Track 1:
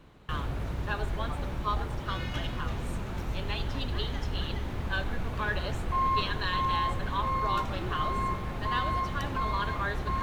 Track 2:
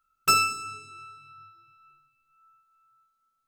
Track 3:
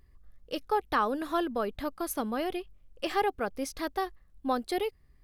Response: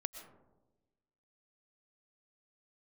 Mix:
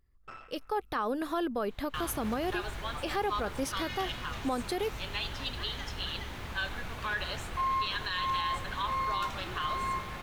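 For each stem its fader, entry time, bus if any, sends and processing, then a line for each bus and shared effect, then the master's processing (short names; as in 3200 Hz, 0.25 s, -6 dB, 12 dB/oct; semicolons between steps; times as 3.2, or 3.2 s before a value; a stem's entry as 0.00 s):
-2.5 dB, 1.65 s, no send, tilt shelf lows -6.5 dB, about 870 Hz
-17.5 dB, 0.00 s, no send, cycle switcher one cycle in 2, muted; Bessel low-pass 1500 Hz, order 2; auto duck -9 dB, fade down 1.05 s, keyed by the third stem
-10.5 dB, 0.00 s, no send, AGC gain up to 12 dB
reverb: off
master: limiter -23 dBFS, peak gain reduction 8 dB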